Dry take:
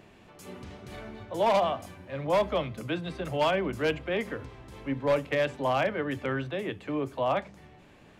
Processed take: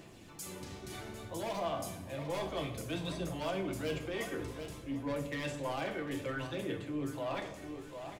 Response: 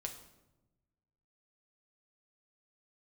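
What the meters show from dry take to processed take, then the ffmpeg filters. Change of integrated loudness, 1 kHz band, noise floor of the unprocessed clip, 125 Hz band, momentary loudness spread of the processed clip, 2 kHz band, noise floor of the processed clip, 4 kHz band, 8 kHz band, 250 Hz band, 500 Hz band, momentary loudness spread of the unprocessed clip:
−9.5 dB, −11.0 dB, −55 dBFS, −5.0 dB, 8 LU, −8.0 dB, −51 dBFS, −6.0 dB, can't be measured, −5.0 dB, −10.0 dB, 17 LU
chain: -filter_complex "[0:a]bass=frequency=250:gain=0,treble=frequency=4000:gain=13,asoftclip=type=tanh:threshold=-23dB,asplit=2[link_01][link_02];[link_02]aecho=0:1:749|1498|2247|2996:0.2|0.0778|0.0303|0.0118[link_03];[link_01][link_03]amix=inputs=2:normalize=0,aphaser=in_gain=1:out_gain=1:delay=2.7:decay=0.35:speed=0.59:type=sinusoidal,equalizer=frequency=290:width_type=o:width=0.32:gain=7,areverse,acompressor=threshold=-31dB:ratio=6,areverse[link_04];[1:a]atrim=start_sample=2205[link_05];[link_04][link_05]afir=irnorm=-1:irlink=0,volume=-1.5dB"

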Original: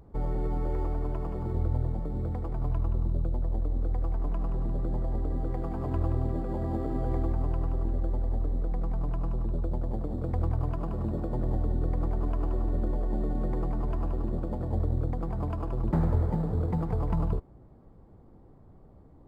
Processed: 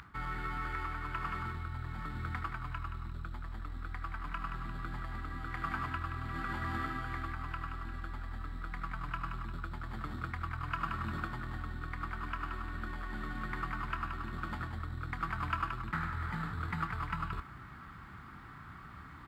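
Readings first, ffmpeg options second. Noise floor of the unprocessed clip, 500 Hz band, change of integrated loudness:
−54 dBFS, −17.0 dB, −8.0 dB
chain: -filter_complex "[0:a]firequalizer=gain_entry='entry(140,0);entry(500,-26);entry(1300,13)':delay=0.05:min_phase=1,areverse,acompressor=threshold=-40dB:ratio=6,areverse,highpass=49,bass=frequency=250:gain=-13,treble=frequency=4000:gain=-14,asplit=2[link_01][link_02];[link_02]adelay=27,volume=-14dB[link_03];[link_01][link_03]amix=inputs=2:normalize=0,volume=15.5dB"

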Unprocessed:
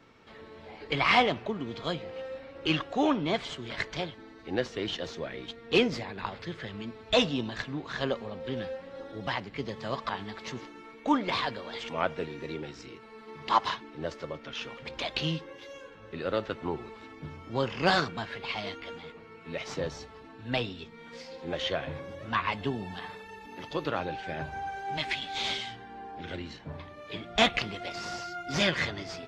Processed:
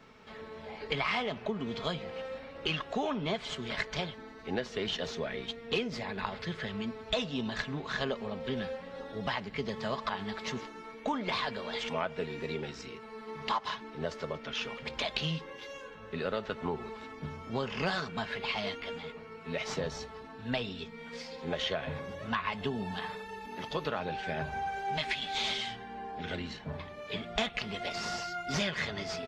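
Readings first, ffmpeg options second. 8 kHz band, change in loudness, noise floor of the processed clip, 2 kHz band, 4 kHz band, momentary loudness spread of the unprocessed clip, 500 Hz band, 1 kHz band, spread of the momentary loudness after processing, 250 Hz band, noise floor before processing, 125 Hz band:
−1.0 dB, −4.0 dB, −48 dBFS, −3.0 dB, −2.5 dB, 18 LU, −3.0 dB, −4.0 dB, 10 LU, −4.0 dB, −50 dBFS, −2.0 dB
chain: -af "equalizer=frequency=320:width=4.6:gain=-7,aecho=1:1:4.7:0.32,acompressor=threshold=-31dB:ratio=6,volume=2dB"

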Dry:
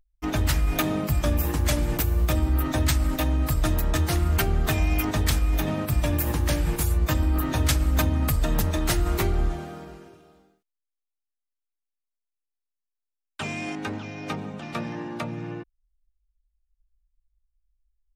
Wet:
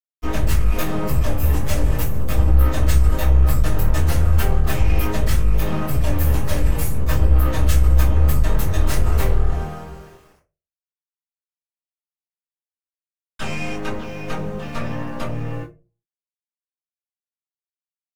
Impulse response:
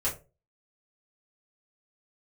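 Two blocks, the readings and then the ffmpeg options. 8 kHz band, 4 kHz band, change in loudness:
−1.0 dB, −1.5 dB, +4.5 dB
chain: -filter_complex "[0:a]aeval=exprs='(tanh(28.2*val(0)+0.8)-tanh(0.8))/28.2':channel_layout=same,aeval=exprs='val(0)*gte(abs(val(0)),0.00188)':channel_layout=same[link_01];[1:a]atrim=start_sample=2205[link_02];[link_01][link_02]afir=irnorm=-1:irlink=0,volume=2dB"

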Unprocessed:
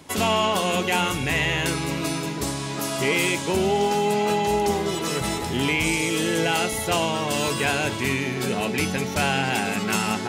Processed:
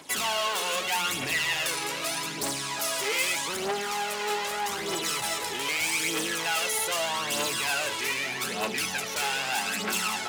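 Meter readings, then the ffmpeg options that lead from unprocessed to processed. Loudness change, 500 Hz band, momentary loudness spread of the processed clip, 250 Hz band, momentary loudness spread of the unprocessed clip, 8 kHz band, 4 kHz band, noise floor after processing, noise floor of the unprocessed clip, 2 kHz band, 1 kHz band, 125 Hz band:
−4.5 dB, −9.5 dB, 4 LU, −14.0 dB, 5 LU, 0.0 dB, −1.5 dB, −34 dBFS, −30 dBFS, −3.0 dB, −5.5 dB, −17.5 dB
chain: -af "asoftclip=type=hard:threshold=-26dB,aphaser=in_gain=1:out_gain=1:delay=2.4:decay=0.52:speed=0.81:type=triangular,highpass=frequency=1100:poles=1,volume=2dB"

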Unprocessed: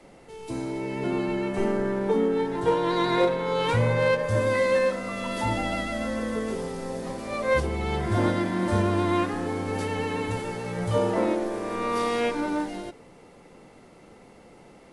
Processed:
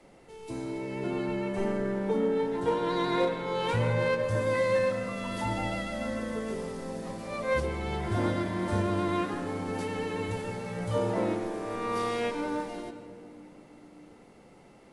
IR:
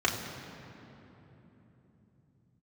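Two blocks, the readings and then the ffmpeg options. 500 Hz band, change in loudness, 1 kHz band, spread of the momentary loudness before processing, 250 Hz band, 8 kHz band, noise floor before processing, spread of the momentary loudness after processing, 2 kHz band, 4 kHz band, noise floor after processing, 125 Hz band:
−4.0 dB, −4.5 dB, −4.5 dB, 9 LU, −4.5 dB, −5.0 dB, −51 dBFS, 10 LU, −4.5 dB, −4.5 dB, −55 dBFS, −4.0 dB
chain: -filter_complex "[0:a]asplit=2[link_01][link_02];[1:a]atrim=start_sample=2205,asetrate=52920,aresample=44100,adelay=134[link_03];[link_02][link_03]afir=irnorm=-1:irlink=0,volume=-20dB[link_04];[link_01][link_04]amix=inputs=2:normalize=0,volume=-5dB"

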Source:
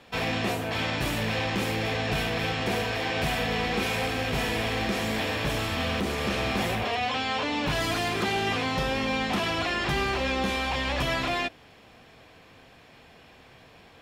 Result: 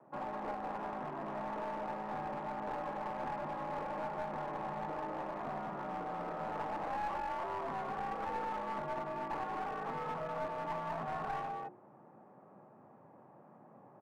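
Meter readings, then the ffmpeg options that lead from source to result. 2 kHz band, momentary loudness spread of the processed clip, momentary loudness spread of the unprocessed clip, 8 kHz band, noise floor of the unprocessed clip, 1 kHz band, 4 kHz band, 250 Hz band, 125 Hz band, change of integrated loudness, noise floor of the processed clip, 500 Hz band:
−19.0 dB, 21 LU, 2 LU, below −25 dB, −53 dBFS, −6.0 dB, −29.0 dB, −15.0 dB, −18.5 dB, −12.5 dB, −60 dBFS, −10.5 dB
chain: -filter_complex "[0:a]lowshelf=frequency=400:gain=-8,afreqshift=99,lowpass=frequency=1100:width=0.5412,lowpass=frequency=1100:width=1.3066,bandreject=frequency=60:width_type=h:width=6,bandreject=frequency=120:width_type=h:width=6,bandreject=frequency=180:width_type=h:width=6,bandreject=frequency=240:width_type=h:width=6,bandreject=frequency=300:width_type=h:width=6,bandreject=frequency=360:width_type=h:width=6,bandreject=frequency=420:width_type=h:width=6,bandreject=frequency=480:width_type=h:width=6,bandreject=frequency=540:width_type=h:width=6,aecho=1:1:202:0.668,acrossover=split=600[link_01][link_02];[link_01]acompressor=threshold=-47dB:ratio=6[link_03];[link_03][link_02]amix=inputs=2:normalize=0,aemphasis=mode=reproduction:type=bsi,aeval=exprs='clip(val(0),-1,0.0178)':channel_layout=same,volume=-3dB"

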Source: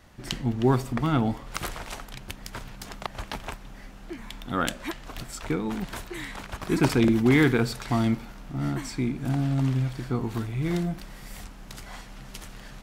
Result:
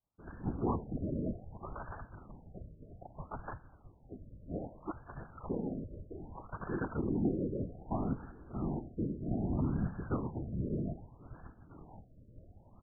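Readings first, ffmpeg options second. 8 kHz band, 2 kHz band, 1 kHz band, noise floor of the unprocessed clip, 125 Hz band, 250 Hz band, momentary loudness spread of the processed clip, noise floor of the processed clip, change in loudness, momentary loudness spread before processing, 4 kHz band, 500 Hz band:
below −40 dB, −20.5 dB, −11.0 dB, −45 dBFS, −11.0 dB, −11.0 dB, 20 LU, −61 dBFS, −11.5 dB, 21 LU, below −40 dB, −11.0 dB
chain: -filter_complex "[0:a]agate=range=-33dB:threshold=-35dB:ratio=3:detection=peak,equalizer=frequency=190:width=0.32:gain=-5.5,alimiter=limit=-21dB:level=0:latency=1:release=228,asplit=2[link_01][link_02];[link_02]adelay=1086,lowpass=frequency=1500:poles=1,volume=-23dB,asplit=2[link_03][link_04];[link_04]adelay=1086,lowpass=frequency=1500:poles=1,volume=0.4,asplit=2[link_05][link_06];[link_06]adelay=1086,lowpass=frequency=1500:poles=1,volume=0.4[link_07];[link_03][link_05][link_07]amix=inputs=3:normalize=0[link_08];[link_01][link_08]amix=inputs=2:normalize=0,afftfilt=real='hypot(re,im)*cos(2*PI*random(0))':imag='hypot(re,im)*sin(2*PI*random(1))':win_size=512:overlap=0.75,afftfilt=real='re*lt(b*sr/1024,630*pow(1800/630,0.5+0.5*sin(2*PI*0.63*pts/sr)))':imag='im*lt(b*sr/1024,630*pow(1800/630,0.5+0.5*sin(2*PI*0.63*pts/sr)))':win_size=1024:overlap=0.75,volume=3dB"

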